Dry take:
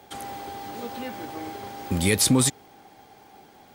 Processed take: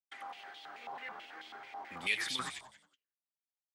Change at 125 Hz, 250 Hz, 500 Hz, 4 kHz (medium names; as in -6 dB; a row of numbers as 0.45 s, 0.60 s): -31.5 dB, -28.0 dB, -22.5 dB, -10.0 dB